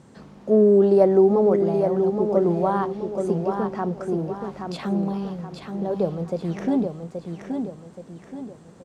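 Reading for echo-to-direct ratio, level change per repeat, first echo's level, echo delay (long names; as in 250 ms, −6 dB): −5.0 dB, −7.5 dB, −6.0 dB, 826 ms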